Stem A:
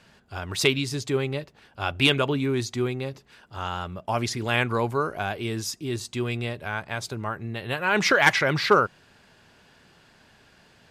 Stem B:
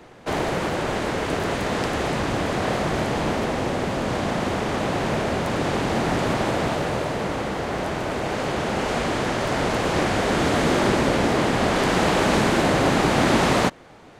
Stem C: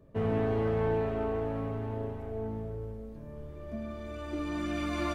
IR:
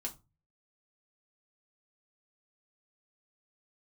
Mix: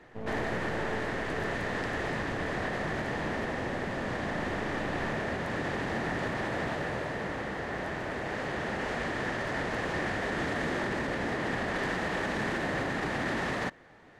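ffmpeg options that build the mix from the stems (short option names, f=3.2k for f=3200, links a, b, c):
-filter_complex "[1:a]alimiter=limit=-14.5dB:level=0:latency=1:release=38,equalizer=f=1.8k:t=o:w=0.27:g=11.5,volume=-9.5dB[a];[2:a]aeval=exprs='max(val(0),0)':c=same,volume=-5.5dB[b];[a][b]amix=inputs=2:normalize=0,highshelf=f=6.6k:g=-8.5"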